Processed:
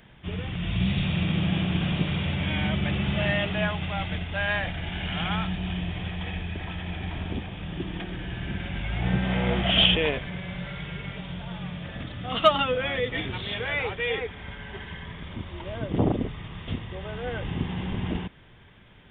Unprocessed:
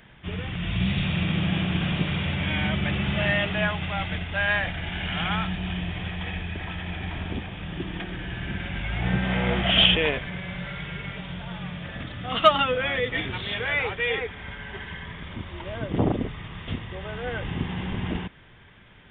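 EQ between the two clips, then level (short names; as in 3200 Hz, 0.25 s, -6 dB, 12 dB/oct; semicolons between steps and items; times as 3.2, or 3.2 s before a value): bell 1700 Hz -4 dB 1.5 oct; 0.0 dB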